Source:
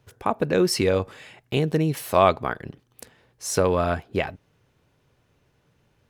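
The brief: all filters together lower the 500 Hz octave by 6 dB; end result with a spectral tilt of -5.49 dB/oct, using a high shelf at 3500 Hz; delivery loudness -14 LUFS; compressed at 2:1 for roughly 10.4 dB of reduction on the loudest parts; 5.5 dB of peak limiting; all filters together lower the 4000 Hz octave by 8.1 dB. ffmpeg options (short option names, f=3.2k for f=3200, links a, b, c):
-af "equalizer=f=500:t=o:g=-7.5,highshelf=f=3.5k:g=-8.5,equalizer=f=4k:t=o:g=-4.5,acompressor=threshold=-35dB:ratio=2,volume=23dB,alimiter=limit=-1dB:level=0:latency=1"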